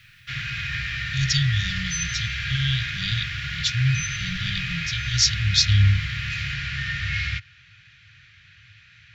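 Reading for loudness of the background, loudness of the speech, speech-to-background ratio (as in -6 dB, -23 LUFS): -27.5 LUFS, -24.0 LUFS, 3.5 dB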